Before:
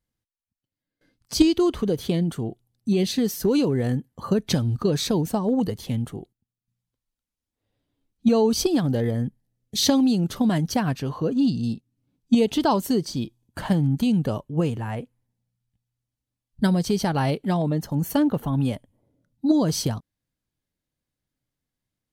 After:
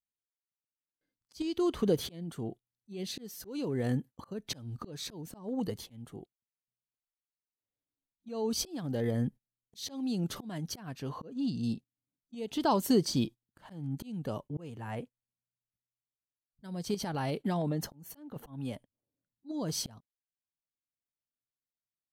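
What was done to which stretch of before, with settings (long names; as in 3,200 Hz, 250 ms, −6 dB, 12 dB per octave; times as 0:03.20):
0:16.94–0:18.36: downward compressor 12 to 1, threshold −25 dBFS
whole clip: noise gate −37 dBFS, range −21 dB; low-shelf EQ 120 Hz −6.5 dB; volume swells 772 ms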